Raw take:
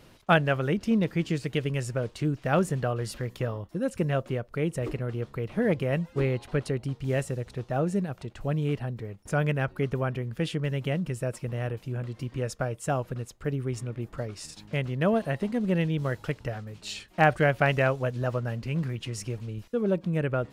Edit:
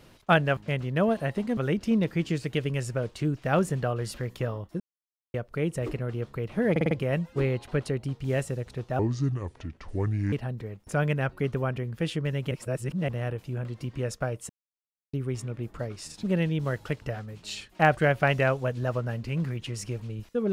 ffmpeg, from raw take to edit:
ffmpeg -i in.wav -filter_complex "[0:a]asplit=16[link_01][link_02][link_03][link_04][link_05][link_06][link_07][link_08][link_09][link_10][link_11][link_12][link_13][link_14][link_15][link_16];[link_01]atrim=end=0.572[link_17];[link_02]atrim=start=14.618:end=15.622[link_18];[link_03]atrim=start=0.568:end=3.8,asetpts=PTS-STARTPTS,afade=type=out:start_time=3.228:duration=0.004:curve=hsin[link_19];[link_04]atrim=start=3.8:end=4.34,asetpts=PTS-STARTPTS,volume=0[link_20];[link_05]atrim=start=4.34:end=5.762,asetpts=PTS-STARTPTS,afade=type=in:duration=0.004:curve=hsin[link_21];[link_06]atrim=start=5.708:end=5.762[link_22];[link_07]atrim=start=5.708:end=5.762[link_23];[link_08]atrim=start=5.708:end=5.762[link_24];[link_09]atrim=start=5.708:end=7.794[link_25];[link_10]atrim=start=7.79:end=8.71,asetpts=PTS-STARTPTS,asetrate=30429,aresample=44100,atrim=end_sample=58800,asetpts=PTS-STARTPTS[link_26];[link_11]atrim=start=8.706:end=10.902[link_27];[link_12]atrim=start=10.898:end=11.472,asetpts=PTS-STARTPTS,areverse[link_28];[link_13]atrim=start=11.468:end=12.88,asetpts=PTS-STARTPTS,afade=type=out:start_time=1.408:duration=0.004:curve=hsin[link_29];[link_14]atrim=start=12.88:end=13.52,asetpts=PTS-STARTPTS,volume=0[link_30];[link_15]atrim=start=13.52:end=14.622,asetpts=PTS-STARTPTS,afade=type=in:duration=0.004:curve=hsin[link_31];[link_16]atrim=start=15.618[link_32];[link_17][link_18]acrossfade=duration=0.004:curve1=hsin:curve2=hsin[link_33];[link_19][link_20][link_21]concat=n=3:v=0:a=1[link_34];[link_33][link_34]acrossfade=duration=0.004:curve1=hsin:curve2=hsin[link_35];[link_35][link_22]acrossfade=duration=0.004:curve1=hsin:curve2=hsin[link_36];[link_36][link_23]acrossfade=duration=0.004:curve1=hsin:curve2=hsin[link_37];[link_37][link_24]acrossfade=duration=0.004:curve1=hsin:curve2=hsin[link_38];[link_38][link_25]acrossfade=duration=0.004:curve1=hsin:curve2=hsin[link_39];[link_39][link_26]acrossfade=duration=0.004:curve1=hsin:curve2=hsin[link_40];[link_40][link_27]acrossfade=duration=0.004:curve1=hsin:curve2=hsin[link_41];[link_41][link_28]acrossfade=duration=0.004:curve1=hsin:curve2=hsin[link_42];[link_29][link_30][link_31]concat=n=3:v=0:a=1[link_43];[link_42][link_43]acrossfade=duration=0.004:curve1=hsin:curve2=hsin[link_44];[link_44][link_32]acrossfade=duration=0.004:curve1=hsin:curve2=hsin" out.wav

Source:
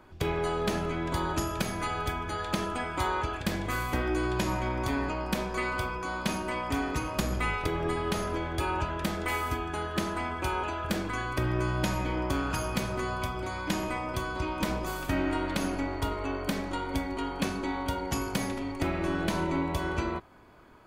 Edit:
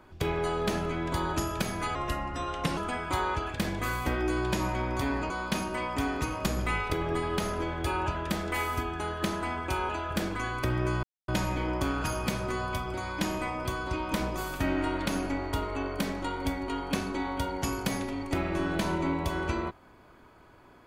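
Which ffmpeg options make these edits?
ffmpeg -i in.wav -filter_complex "[0:a]asplit=5[link_01][link_02][link_03][link_04][link_05];[link_01]atrim=end=1.954[link_06];[link_02]atrim=start=1.95:end=2.64,asetpts=PTS-STARTPTS,asetrate=37044,aresample=44100[link_07];[link_03]atrim=start=2.636:end=5.172[link_08];[link_04]atrim=start=6.038:end=11.77,asetpts=PTS-STARTPTS,afade=type=out:start_time=5.728:duration=0.004:curve=hsin,apad=pad_dur=0.25[link_09];[link_05]atrim=start=11.77,asetpts=PTS-STARTPTS,afade=type=in:duration=0.004:curve=hsin[link_10];[link_06][link_07]acrossfade=duration=0.004:curve1=hsin:curve2=hsin[link_11];[link_11][link_08]acrossfade=duration=0.004:curve1=hsin:curve2=hsin[link_12];[link_09][link_10]concat=n=2:v=0:a=1[link_13];[link_12][link_13]acrossfade=duration=0.004:curve1=hsin:curve2=hsin" out.wav

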